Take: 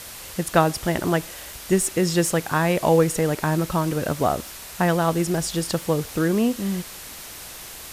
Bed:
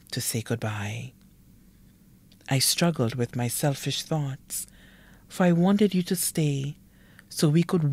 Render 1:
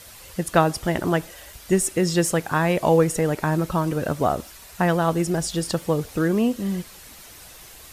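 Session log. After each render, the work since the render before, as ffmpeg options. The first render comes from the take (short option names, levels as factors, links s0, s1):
-af "afftdn=nr=8:nf=-39"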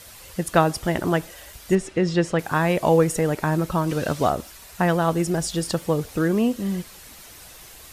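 -filter_complex "[0:a]asettb=1/sr,asplit=3[s0][s1][s2];[s0]atrim=end=1.754[s3];[s1]atrim=start=1.75:end=2.39,asetpts=PTS-STARTPTS,afade=t=in:d=0.004:c=qsin,afade=t=out:st=0.636:d=0.004:c=qsin,lowpass=3800[s4];[s2]atrim=start=2.386[s5];[s3][s4]acrossfade=d=0.004:c1=hsin:c2=qsin[s6];[s6][s5]acrossfade=d=0.004:c1=qsin:c2=hsin,asettb=1/sr,asplit=3[s7][s8][s9];[s7]atrim=end=3.894[s10];[s8]atrim=start=3.89:end=4.3,asetpts=PTS-STARTPTS,afade=t=in:d=0.004:c=qsin,afade=t=out:st=0.406:d=0.004:c=qsin,equalizer=f=4300:t=o:w=1.9:g=7.5[s11];[s9]atrim=start=4.296[s12];[s10][s11]acrossfade=d=0.004:c1=hsin:c2=qsin[s13];[s13][s12]acrossfade=d=0.004:c1=qsin:c2=hsin"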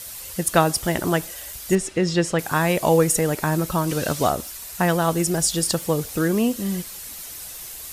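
-af "highshelf=f=4900:g=12"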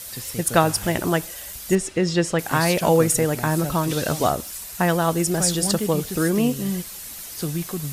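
-filter_complex "[1:a]volume=0.501[s0];[0:a][s0]amix=inputs=2:normalize=0"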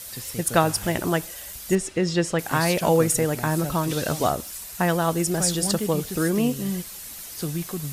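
-af "volume=0.794"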